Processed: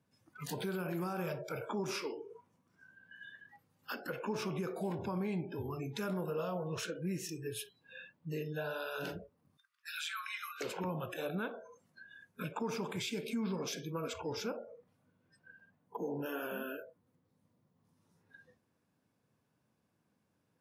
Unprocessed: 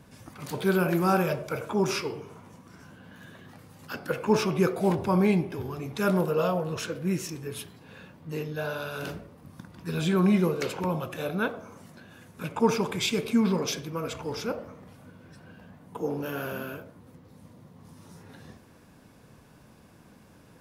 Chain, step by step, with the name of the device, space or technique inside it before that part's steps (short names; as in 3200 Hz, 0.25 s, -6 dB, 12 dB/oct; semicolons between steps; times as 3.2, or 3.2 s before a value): 9.57–10.61 elliptic high-pass 1200 Hz, stop band 40 dB; spectral noise reduction 26 dB; podcast mastering chain (HPF 81 Hz 24 dB/oct; compressor 2:1, threshold -45 dBFS, peak gain reduction 15.5 dB; limiter -31.5 dBFS, peak gain reduction 7 dB; gain +3 dB; MP3 128 kbps 48000 Hz)